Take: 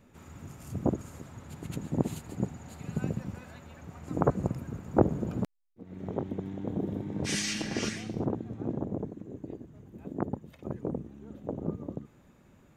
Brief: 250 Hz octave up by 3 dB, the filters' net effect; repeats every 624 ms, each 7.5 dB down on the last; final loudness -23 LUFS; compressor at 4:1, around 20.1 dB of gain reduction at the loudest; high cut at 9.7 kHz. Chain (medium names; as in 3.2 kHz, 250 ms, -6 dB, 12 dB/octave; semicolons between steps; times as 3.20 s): low-pass 9.7 kHz; peaking EQ 250 Hz +4 dB; compression 4:1, threshold -41 dBFS; feedback delay 624 ms, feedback 42%, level -7.5 dB; trim +21 dB